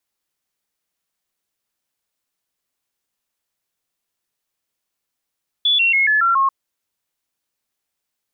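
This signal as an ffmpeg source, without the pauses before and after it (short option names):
-f lavfi -i "aevalsrc='0.237*clip(min(mod(t,0.14),0.14-mod(t,0.14))/0.005,0,1)*sin(2*PI*3440*pow(2,-floor(t/0.14)/3)*mod(t,0.14))':d=0.84:s=44100"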